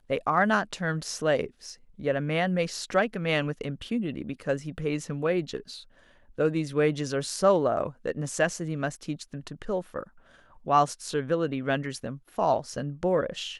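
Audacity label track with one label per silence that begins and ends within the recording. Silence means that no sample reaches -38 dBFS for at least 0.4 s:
5.800000	6.390000	silence
10.030000	10.660000	silence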